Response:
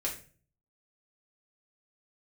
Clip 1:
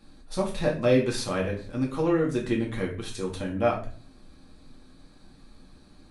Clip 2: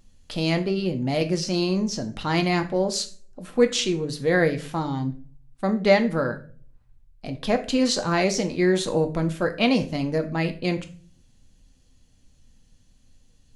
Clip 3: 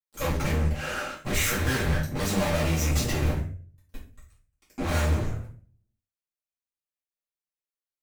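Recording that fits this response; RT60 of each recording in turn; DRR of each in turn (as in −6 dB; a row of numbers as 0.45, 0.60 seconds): 1; 0.40, 0.40, 0.40 seconds; −3.5, 5.5, −9.0 decibels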